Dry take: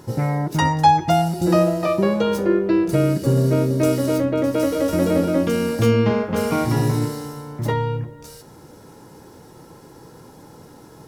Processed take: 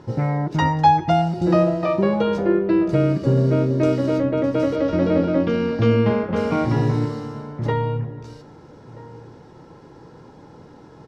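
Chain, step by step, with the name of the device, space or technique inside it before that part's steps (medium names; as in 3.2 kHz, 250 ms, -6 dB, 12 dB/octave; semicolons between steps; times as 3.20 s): shout across a valley (distance through air 160 m; echo from a far wall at 220 m, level -18 dB); 4.76–5.91 s: low-pass 5.6 kHz 24 dB/octave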